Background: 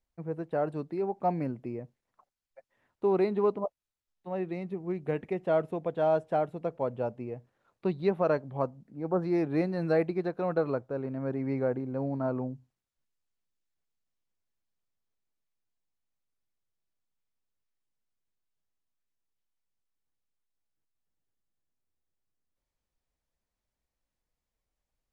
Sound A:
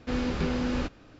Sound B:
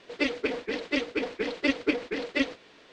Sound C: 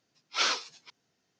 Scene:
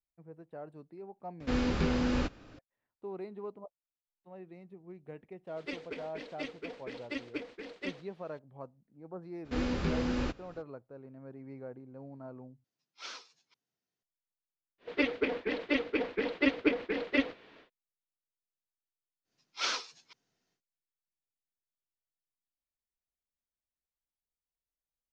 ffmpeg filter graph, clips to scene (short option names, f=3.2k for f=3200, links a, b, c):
-filter_complex "[1:a]asplit=2[a][b];[2:a]asplit=2[c][d];[3:a]asplit=2[e][f];[0:a]volume=-15.5dB[g];[d]lowpass=3.2k[h];[g]asplit=2[i][j];[i]atrim=end=12.644[k];[e]atrim=end=1.39,asetpts=PTS-STARTPTS,volume=-17.5dB[l];[j]atrim=start=14.026[m];[a]atrim=end=1.19,asetpts=PTS-STARTPTS,volume=-1dB,afade=t=in:d=0.004:c=hsin,afade=t=out:st=1.186:d=0.004:c=hsin,adelay=1400[n];[c]atrim=end=2.92,asetpts=PTS-STARTPTS,volume=-13dB,afade=t=in:d=0.004:c=hsin,afade=t=out:st=2.916:d=0.004:c=hsin,adelay=5470[o];[b]atrim=end=1.19,asetpts=PTS-STARTPTS,volume=-3.5dB,afade=t=in:d=0.02,afade=t=out:st=1.17:d=0.02,adelay=9440[p];[h]atrim=end=2.92,asetpts=PTS-STARTPTS,volume=-1.5dB,afade=t=in:d=0.1,afade=t=out:st=2.82:d=0.1,adelay=14780[q];[f]atrim=end=1.39,asetpts=PTS-STARTPTS,volume=-5.5dB,afade=t=in:d=0.1,afade=t=out:st=1.29:d=0.1,adelay=19230[r];[k][l]acrossfade=d=0.004:c1=hsin:c2=hsin[s];[s][m]acrossfade=d=0.004:c1=hsin:c2=hsin[t];[t][n][o][p][q][r]amix=inputs=6:normalize=0"